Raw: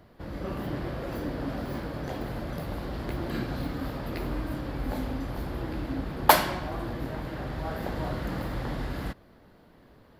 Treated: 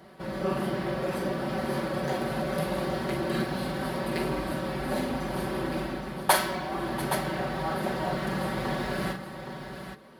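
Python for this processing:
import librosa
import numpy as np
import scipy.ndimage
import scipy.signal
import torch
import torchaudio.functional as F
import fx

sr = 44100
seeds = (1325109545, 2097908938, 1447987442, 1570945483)

y = scipy.signal.sosfilt(scipy.signal.butter(2, 66.0, 'highpass', fs=sr, output='sos'), x)
y = fx.low_shelf(y, sr, hz=120.0, db=-10.0)
y = fx.rider(y, sr, range_db=5, speed_s=0.5)
y = fx.high_shelf(y, sr, hz=7800.0, db=4.5)
y = y + 0.91 * np.pad(y, (int(5.3 * sr / 1000.0), 0))[:len(y)]
y = fx.echo_multitap(y, sr, ms=(43, 689, 820), db=(-7.0, -16.5, -9.0))
y = np.interp(np.arange(len(y)), np.arange(len(y))[::2], y[::2])
y = y * librosa.db_to_amplitude(-1.0)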